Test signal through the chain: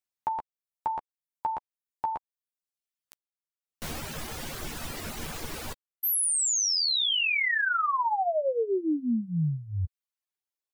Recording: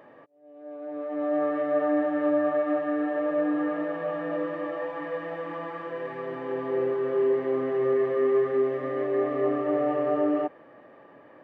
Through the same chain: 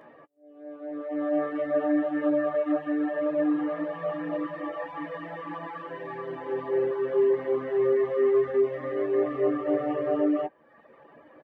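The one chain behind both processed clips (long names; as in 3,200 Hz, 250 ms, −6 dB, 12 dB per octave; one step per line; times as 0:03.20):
double-tracking delay 13 ms −5 dB
reverb reduction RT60 0.87 s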